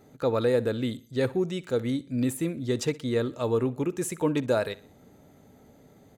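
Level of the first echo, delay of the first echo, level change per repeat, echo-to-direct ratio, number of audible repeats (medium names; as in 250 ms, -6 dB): -20.0 dB, 61 ms, -7.0 dB, -19.0 dB, 3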